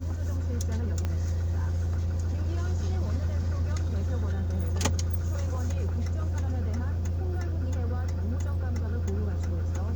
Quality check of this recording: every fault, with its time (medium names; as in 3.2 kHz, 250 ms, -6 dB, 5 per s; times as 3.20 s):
1.05 s: pop -18 dBFS